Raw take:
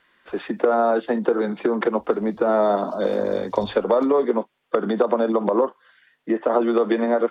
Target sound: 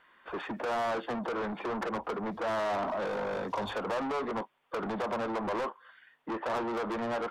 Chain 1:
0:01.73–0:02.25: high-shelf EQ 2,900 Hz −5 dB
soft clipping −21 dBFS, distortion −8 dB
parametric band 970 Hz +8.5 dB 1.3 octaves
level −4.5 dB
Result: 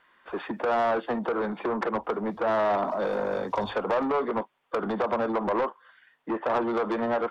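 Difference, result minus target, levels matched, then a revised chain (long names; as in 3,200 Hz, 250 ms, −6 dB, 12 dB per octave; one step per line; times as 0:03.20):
soft clipping: distortion −4 dB
0:01.73–0:02.25: high-shelf EQ 2,900 Hz −5 dB
soft clipping −29.5 dBFS, distortion −4 dB
parametric band 970 Hz +8.5 dB 1.3 octaves
level −4.5 dB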